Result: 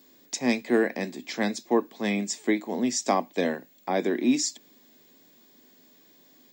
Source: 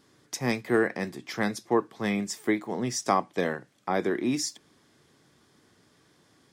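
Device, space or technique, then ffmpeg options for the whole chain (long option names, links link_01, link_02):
old television with a line whistle: -af "highpass=frequency=180:width=0.5412,highpass=frequency=180:width=1.3066,equalizer=frequency=250:width_type=q:width=4:gain=7,equalizer=frequency=610:width_type=q:width=4:gain=4,equalizer=frequency=1300:width_type=q:width=4:gain=-9,equalizer=frequency=2500:width_type=q:width=4:gain=4,equalizer=frequency=4000:width_type=q:width=4:gain=6,equalizer=frequency=7300:width_type=q:width=4:gain=9,lowpass=frequency=7700:width=0.5412,lowpass=frequency=7700:width=1.3066,aeval=exprs='val(0)+0.00141*sin(2*PI*15625*n/s)':channel_layout=same"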